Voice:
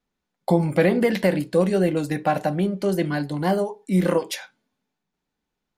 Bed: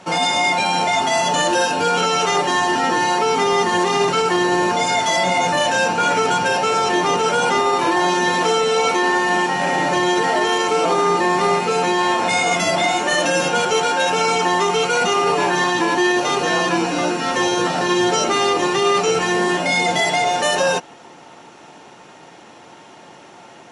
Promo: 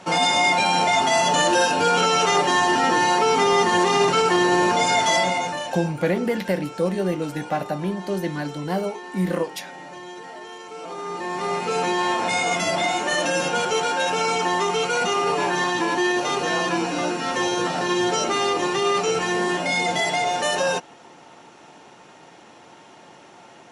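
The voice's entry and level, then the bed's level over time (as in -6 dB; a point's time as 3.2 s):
5.25 s, -3.5 dB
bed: 5.16 s -1 dB
6 s -20.5 dB
10.65 s -20.5 dB
11.76 s -4.5 dB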